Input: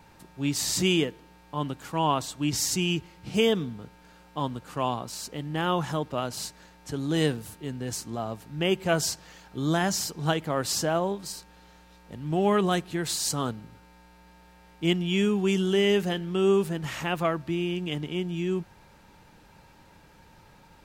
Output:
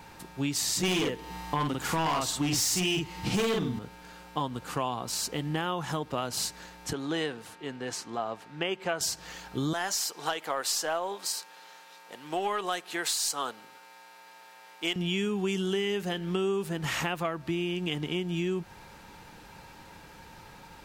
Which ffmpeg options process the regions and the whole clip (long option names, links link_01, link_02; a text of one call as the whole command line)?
ffmpeg -i in.wav -filter_complex "[0:a]asettb=1/sr,asplit=3[link_01][link_02][link_03];[link_01]atrim=end=0.834[link_04];[link_02]atrim=start=0.83:end=3.79,asetpts=PTS-STARTPTS,afade=type=in:duration=0.004:curve=qsin,afade=type=out:start_time=2.956:duration=0.004:curve=qsin,acontrast=90,asplit=2[link_05][link_06];[link_06]adelay=49,volume=-3dB[link_07];[link_05][link_07]amix=inputs=2:normalize=0,atrim=end_sample=130536,volume=16dB,asoftclip=hard,volume=-16dB[link_08];[link_03]atrim=start=3.786[link_09];[link_04][link_08]acrossfade=duration=0.004:curve1=hsin:curve2=qsin[link_10];[link_10][link_09]acrossfade=duration=0.004:curve1=qsin:curve2=hsin,asettb=1/sr,asplit=3[link_11][link_12][link_13];[link_11]atrim=end=6.934[link_14];[link_12]atrim=start=6.93:end=9.01,asetpts=PTS-STARTPTS,afade=type=in:duration=0.004:curve=qsin,afade=type=out:start_time=2.076:duration=0.004:curve=qsin,highpass=frequency=690:poles=1,aemphasis=mode=reproduction:type=75fm[link_15];[link_13]atrim=start=9.006[link_16];[link_14][link_15]acrossfade=duration=0.004:curve1=hsin:curve2=qsin[link_17];[link_17][link_16]acrossfade=duration=0.004:curve1=qsin:curve2=hsin,asettb=1/sr,asplit=3[link_18][link_19][link_20];[link_18]atrim=end=9.734[link_21];[link_19]atrim=start=9.73:end=14.96,asetpts=PTS-STARTPTS,afade=type=in:duration=0.004:curve=qsin,afade=type=out:start_time=5.226:duration=0.004:curve=qsin,highpass=560,aeval=exprs='(tanh(6.31*val(0)+0.2)-tanh(0.2))/6.31':channel_layout=same[link_22];[link_20]atrim=start=14.956[link_23];[link_21][link_22]acrossfade=duration=0.004:curve1=hsin:curve2=qsin[link_24];[link_24][link_23]acrossfade=duration=0.004:curve1=qsin:curve2=hsin,lowshelf=frequency=340:gain=-5,bandreject=frequency=600:width=14,acompressor=threshold=-34dB:ratio=6,volume=7dB" out.wav